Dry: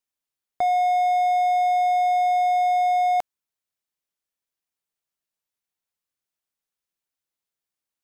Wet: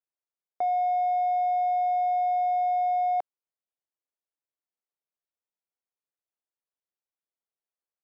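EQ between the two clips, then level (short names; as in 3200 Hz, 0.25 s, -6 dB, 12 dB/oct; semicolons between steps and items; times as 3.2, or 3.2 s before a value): band-pass 470 Hz, Q 0.95; low shelf 450 Hz -9 dB; 0.0 dB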